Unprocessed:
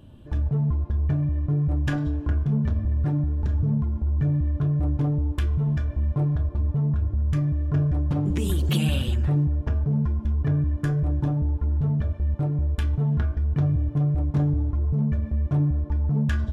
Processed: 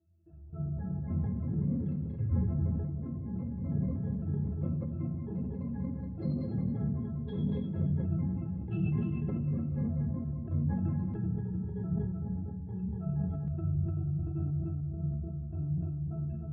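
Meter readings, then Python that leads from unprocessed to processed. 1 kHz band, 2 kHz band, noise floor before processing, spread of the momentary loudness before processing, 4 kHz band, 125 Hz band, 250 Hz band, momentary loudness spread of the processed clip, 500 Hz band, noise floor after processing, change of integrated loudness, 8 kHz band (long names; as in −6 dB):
−12.5 dB, below −15 dB, −38 dBFS, 2 LU, below −25 dB, −10.0 dB, −6.0 dB, 6 LU, −8.0 dB, −40 dBFS, −9.5 dB, can't be measured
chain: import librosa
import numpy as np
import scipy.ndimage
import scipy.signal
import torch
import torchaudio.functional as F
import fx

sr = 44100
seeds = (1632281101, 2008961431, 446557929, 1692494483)

y = scipy.signal.sosfilt(scipy.signal.butter(4, 67.0, 'highpass', fs=sr, output='sos'), x)
y = fx.level_steps(y, sr, step_db=22)
y = fx.octave_resonator(y, sr, note='E', decay_s=0.24)
y = fx.echo_feedback(y, sr, ms=299, feedback_pct=22, wet_db=-4.5)
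y = fx.room_shoebox(y, sr, seeds[0], volume_m3=2100.0, walls='furnished', distance_m=2.9)
y = fx.echo_pitch(y, sr, ms=365, semitones=4, count=2, db_per_echo=-3.0)
y = fx.air_absorb(y, sr, metres=310.0)
y = fx.sustainer(y, sr, db_per_s=30.0)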